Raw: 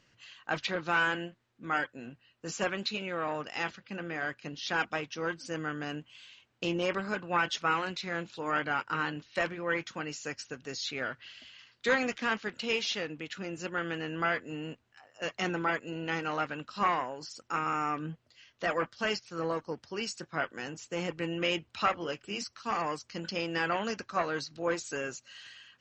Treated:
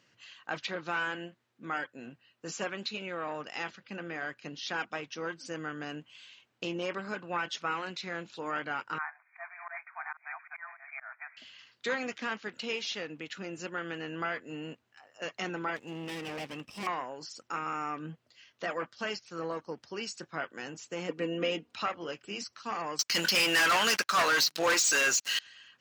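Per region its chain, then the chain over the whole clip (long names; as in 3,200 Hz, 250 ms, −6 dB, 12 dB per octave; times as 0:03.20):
0:08.98–0:11.37: delay that plays each chunk backwards 596 ms, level −3 dB + linear-phase brick-wall band-pass 640–2,500 Hz + volume swells 186 ms
0:15.76–0:16.87: lower of the sound and its delayed copy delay 0.37 ms + hard clipping −32.5 dBFS
0:21.09–0:21.74: parametric band 330 Hz +9.5 dB 1.5 octaves + comb filter 4.2 ms, depth 62%
0:22.99–0:25.39: tilt shelving filter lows −9.5 dB, about 780 Hz + leveller curve on the samples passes 5
whole clip: Bessel high-pass filter 150 Hz; downward compressor 1.5 to 1, threshold −37 dBFS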